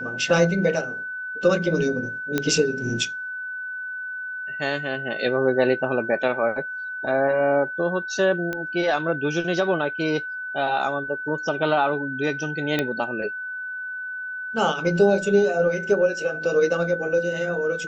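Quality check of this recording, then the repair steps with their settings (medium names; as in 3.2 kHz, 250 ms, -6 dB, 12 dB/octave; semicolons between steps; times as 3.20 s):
whine 1.5 kHz -29 dBFS
2.38 s: pop -8 dBFS
8.53 s: pop -15 dBFS
12.79 s: pop -9 dBFS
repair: de-click; band-stop 1.5 kHz, Q 30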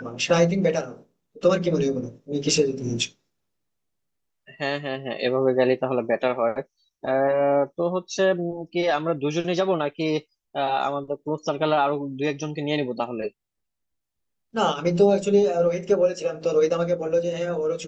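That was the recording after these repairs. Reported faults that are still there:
nothing left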